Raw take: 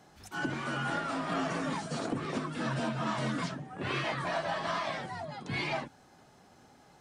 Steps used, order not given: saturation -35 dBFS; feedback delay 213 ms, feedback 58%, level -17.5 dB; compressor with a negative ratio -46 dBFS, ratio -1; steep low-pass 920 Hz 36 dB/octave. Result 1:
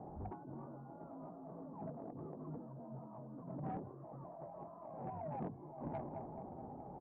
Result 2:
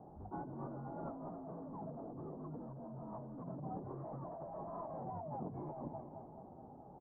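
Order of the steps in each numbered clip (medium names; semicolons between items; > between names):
feedback delay > compressor with a negative ratio > steep low-pass > saturation; feedback delay > saturation > steep low-pass > compressor with a negative ratio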